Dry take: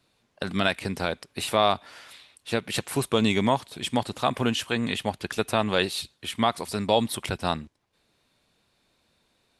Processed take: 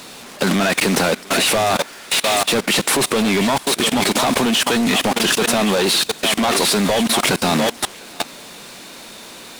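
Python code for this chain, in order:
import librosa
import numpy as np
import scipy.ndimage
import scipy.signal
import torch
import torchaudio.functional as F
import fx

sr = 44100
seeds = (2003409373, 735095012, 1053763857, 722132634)

p1 = fx.delta_mod(x, sr, bps=64000, step_db=-35.0)
p2 = scipy.signal.sosfilt(scipy.signal.butter(4, 180.0, 'highpass', fs=sr, output='sos'), p1)
p3 = fx.leveller(p2, sr, passes=5)
p4 = p3 + fx.echo_thinned(p3, sr, ms=702, feedback_pct=19, hz=470.0, wet_db=-7.0, dry=0)
p5 = fx.level_steps(p4, sr, step_db=21)
y = F.gain(torch.from_numpy(p5), 4.5).numpy()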